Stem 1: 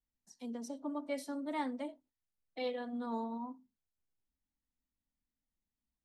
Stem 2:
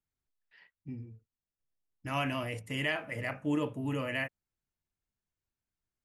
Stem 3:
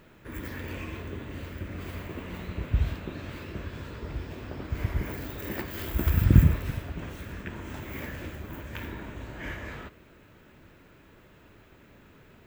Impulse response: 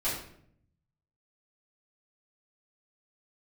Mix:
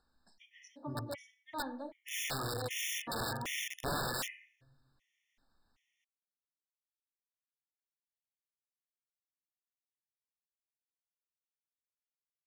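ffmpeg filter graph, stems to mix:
-filter_complex "[0:a]lowpass=5800,equalizer=frequency=1700:width=0.33:gain=11.5,acompressor=mode=upward:threshold=-50dB:ratio=2.5,volume=-9.5dB,asplit=2[link_01][link_02];[link_02]volume=-15.5dB[link_03];[1:a]aecho=1:1:2.4:0.76,volume=-2dB,asplit=2[link_04][link_05];[link_05]volume=-12.5dB[link_06];[3:a]atrim=start_sample=2205[link_07];[link_03][link_06]amix=inputs=2:normalize=0[link_08];[link_08][link_07]afir=irnorm=-1:irlink=0[link_09];[link_01][link_04][link_09]amix=inputs=3:normalize=0,aeval=exprs='(mod(28.2*val(0)+1,2)-1)/28.2':channel_layout=same,afftfilt=real='re*gt(sin(2*PI*1.3*pts/sr)*(1-2*mod(floor(b*sr/1024/1800),2)),0)':imag='im*gt(sin(2*PI*1.3*pts/sr)*(1-2*mod(floor(b*sr/1024/1800),2)),0)':win_size=1024:overlap=0.75"

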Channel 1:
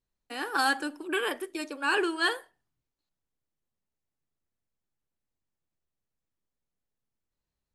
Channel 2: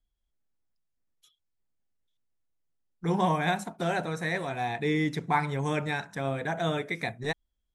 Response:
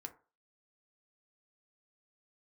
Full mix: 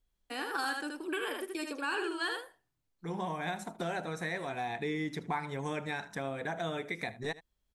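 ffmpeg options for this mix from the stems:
-filter_complex "[0:a]volume=-0.5dB,asplit=3[link_01][link_02][link_03];[link_02]volume=-5dB[link_04];[1:a]equalizer=frequency=130:width=2.1:gain=-5.5,volume=0dB,asplit=2[link_05][link_06];[link_06]volume=-19.5dB[link_07];[link_03]apad=whole_len=341479[link_08];[link_05][link_08]sidechaincompress=threshold=-40dB:ratio=8:attack=16:release=1130[link_09];[link_04][link_07]amix=inputs=2:normalize=0,aecho=0:1:77:1[link_10];[link_01][link_09][link_10]amix=inputs=3:normalize=0,acompressor=threshold=-35dB:ratio=2.5"

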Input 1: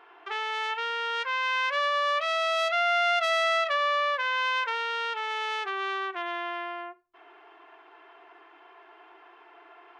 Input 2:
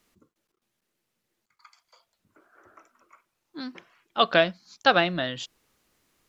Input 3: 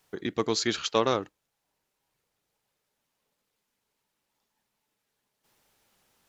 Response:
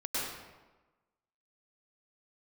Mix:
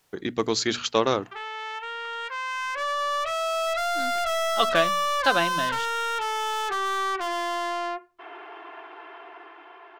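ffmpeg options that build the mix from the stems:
-filter_complex "[0:a]dynaudnorm=framelen=430:gausssize=11:maxgain=16dB,highshelf=frequency=7000:gain=-9,asoftclip=type=tanh:threshold=-20.5dB,adelay=1050,volume=-2.5dB[link_01];[1:a]adelay=400,volume=-2.5dB[link_02];[2:a]volume=2.5dB[link_03];[link_01][link_02][link_03]amix=inputs=3:normalize=0,bandreject=frequency=60:width_type=h:width=6,bandreject=frequency=120:width_type=h:width=6,bandreject=frequency=180:width_type=h:width=6,bandreject=frequency=240:width_type=h:width=6"

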